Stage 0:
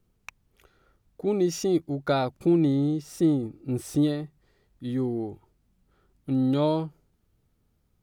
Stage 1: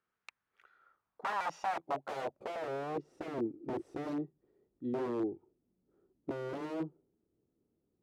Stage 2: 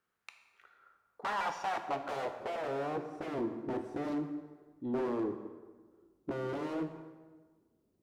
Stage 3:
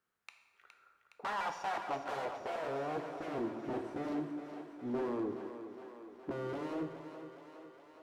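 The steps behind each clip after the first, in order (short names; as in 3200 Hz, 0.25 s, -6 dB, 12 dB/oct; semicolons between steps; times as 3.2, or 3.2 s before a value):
wrapped overs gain 24.5 dB; band-pass sweep 1500 Hz -> 350 Hz, 0.64–3.16; gain +2 dB
soft clip -30.5 dBFS, distortion -16 dB; plate-style reverb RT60 1.4 s, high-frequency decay 0.7×, DRR 6 dB; gain +2.5 dB
thinning echo 0.415 s, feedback 71%, high-pass 280 Hz, level -9 dB; gain -2.5 dB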